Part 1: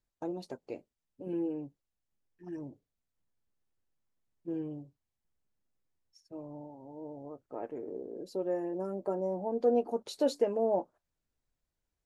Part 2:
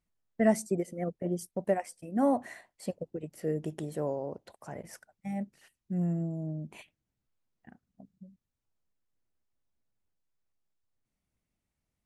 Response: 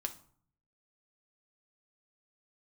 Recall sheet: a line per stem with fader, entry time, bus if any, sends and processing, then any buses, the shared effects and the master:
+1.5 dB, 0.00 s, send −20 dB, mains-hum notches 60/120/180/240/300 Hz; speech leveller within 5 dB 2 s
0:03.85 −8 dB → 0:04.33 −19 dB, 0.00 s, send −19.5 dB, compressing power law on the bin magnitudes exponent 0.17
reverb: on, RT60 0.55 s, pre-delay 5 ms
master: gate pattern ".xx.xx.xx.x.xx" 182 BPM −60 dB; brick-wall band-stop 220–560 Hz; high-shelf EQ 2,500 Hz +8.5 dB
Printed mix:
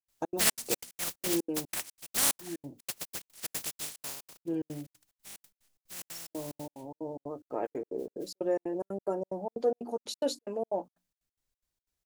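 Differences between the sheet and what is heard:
stem 1: send off
master: missing brick-wall band-stop 220–560 Hz

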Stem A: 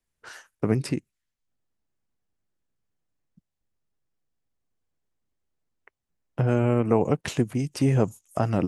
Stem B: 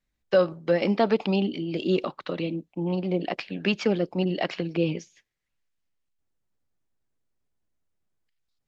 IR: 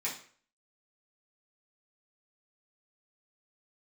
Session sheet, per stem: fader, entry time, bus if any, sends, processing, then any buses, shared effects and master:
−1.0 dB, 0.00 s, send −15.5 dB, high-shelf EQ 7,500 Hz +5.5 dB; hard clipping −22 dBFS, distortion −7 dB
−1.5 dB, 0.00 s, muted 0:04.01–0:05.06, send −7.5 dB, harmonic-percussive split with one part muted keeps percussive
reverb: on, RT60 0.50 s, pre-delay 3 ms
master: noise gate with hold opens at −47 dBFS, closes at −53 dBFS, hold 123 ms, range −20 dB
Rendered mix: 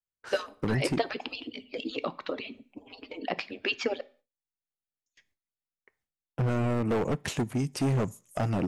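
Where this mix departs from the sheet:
stem A: missing high-shelf EQ 7,500 Hz +5.5 dB
reverb return −9.0 dB

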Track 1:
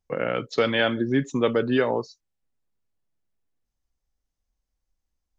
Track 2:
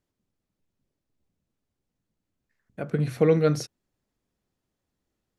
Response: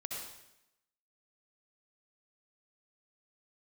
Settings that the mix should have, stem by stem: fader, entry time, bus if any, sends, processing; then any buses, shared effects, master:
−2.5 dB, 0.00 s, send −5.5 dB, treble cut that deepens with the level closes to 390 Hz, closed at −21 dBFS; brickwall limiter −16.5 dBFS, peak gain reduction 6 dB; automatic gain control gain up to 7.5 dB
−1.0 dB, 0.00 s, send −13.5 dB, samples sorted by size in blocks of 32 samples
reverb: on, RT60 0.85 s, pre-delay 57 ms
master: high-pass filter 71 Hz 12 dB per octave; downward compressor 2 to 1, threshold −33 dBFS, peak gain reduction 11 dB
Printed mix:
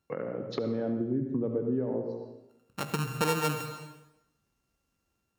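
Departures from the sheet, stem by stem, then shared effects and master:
stem 1 −2.5 dB → −9.5 dB
reverb return +8.0 dB

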